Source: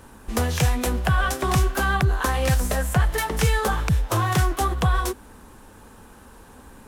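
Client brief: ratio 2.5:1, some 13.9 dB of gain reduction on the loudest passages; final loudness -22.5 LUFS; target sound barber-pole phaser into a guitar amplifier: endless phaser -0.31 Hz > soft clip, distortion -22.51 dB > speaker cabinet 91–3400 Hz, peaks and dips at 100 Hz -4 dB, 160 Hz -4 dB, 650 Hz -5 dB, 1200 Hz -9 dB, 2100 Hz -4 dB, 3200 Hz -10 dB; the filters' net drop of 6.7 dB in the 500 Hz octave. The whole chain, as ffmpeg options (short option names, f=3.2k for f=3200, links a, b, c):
-filter_complex "[0:a]equalizer=f=500:t=o:g=-7,acompressor=threshold=-38dB:ratio=2.5,asplit=2[a][b];[b]afreqshift=-0.31[c];[a][c]amix=inputs=2:normalize=1,asoftclip=threshold=-27.5dB,highpass=91,equalizer=f=100:t=q:w=4:g=-4,equalizer=f=160:t=q:w=4:g=-4,equalizer=f=650:t=q:w=4:g=-5,equalizer=f=1.2k:t=q:w=4:g=-9,equalizer=f=2.1k:t=q:w=4:g=-4,equalizer=f=3.2k:t=q:w=4:g=-10,lowpass=f=3.4k:w=0.5412,lowpass=f=3.4k:w=1.3066,volume=22.5dB"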